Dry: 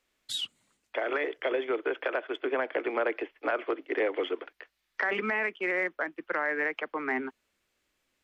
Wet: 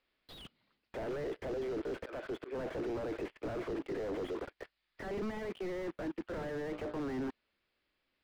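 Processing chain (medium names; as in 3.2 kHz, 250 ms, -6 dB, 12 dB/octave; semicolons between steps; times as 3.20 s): 6.26–6.96 s: hum notches 60/120/180/240/300/360/420/480/540/600 Hz; waveshaping leveller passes 3; 1.58–2.56 s: slow attack 739 ms; hard clipper -35 dBFS, distortion -6 dB; resampled via 11.025 kHz; slew-rate limiter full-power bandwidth 6.4 Hz; trim +2 dB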